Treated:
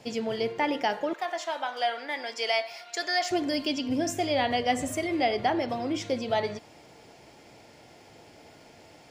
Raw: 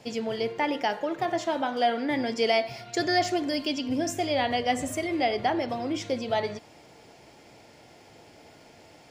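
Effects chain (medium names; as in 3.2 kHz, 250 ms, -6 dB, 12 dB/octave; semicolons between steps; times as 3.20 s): 1.13–3.31 s: high-pass 760 Hz 12 dB/octave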